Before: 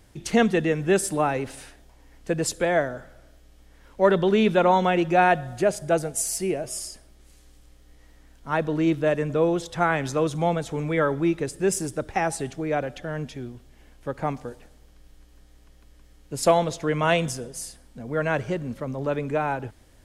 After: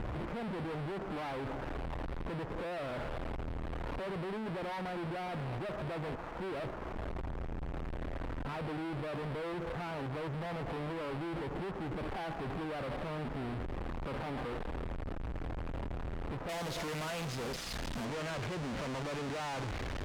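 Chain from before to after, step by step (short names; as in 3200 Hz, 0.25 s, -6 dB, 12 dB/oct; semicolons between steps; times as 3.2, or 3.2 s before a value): infinite clipping; LPF 1200 Hz 24 dB/oct, from 16.49 s 4600 Hz, from 18.05 s 2700 Hz; limiter -32 dBFS, peak gain reduction 9 dB; one-sided clip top -54 dBFS, bottom -36.5 dBFS; gain +4 dB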